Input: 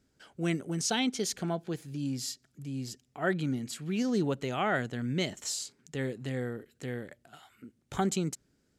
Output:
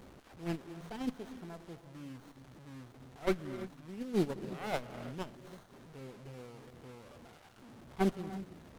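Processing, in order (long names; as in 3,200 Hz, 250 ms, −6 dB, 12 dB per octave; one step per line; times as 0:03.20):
linear delta modulator 64 kbit/s, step −34 dBFS
dynamic equaliser 6,900 Hz, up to −6 dB, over −48 dBFS, Q 0.93
noise gate −26 dBFS, range −17 dB
reverb whose tail is shaped and stops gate 360 ms rising, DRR 11.5 dB
windowed peak hold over 17 samples
level +3.5 dB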